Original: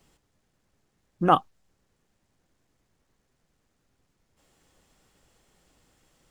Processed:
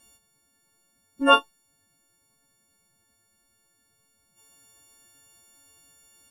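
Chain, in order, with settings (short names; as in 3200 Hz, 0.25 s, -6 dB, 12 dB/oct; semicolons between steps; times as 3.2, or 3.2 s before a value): frequency quantiser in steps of 4 st; formant-preserving pitch shift +8 st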